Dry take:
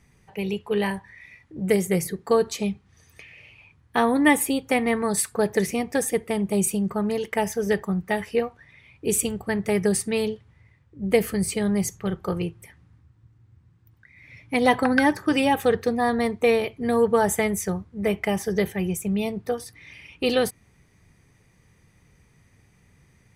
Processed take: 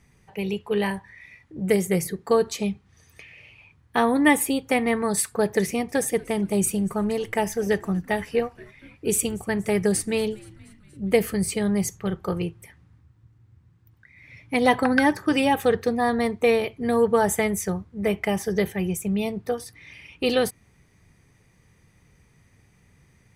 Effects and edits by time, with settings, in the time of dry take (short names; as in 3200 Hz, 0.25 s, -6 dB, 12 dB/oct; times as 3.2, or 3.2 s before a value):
5.65–11.1 frequency-shifting echo 0.237 s, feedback 65%, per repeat -99 Hz, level -23.5 dB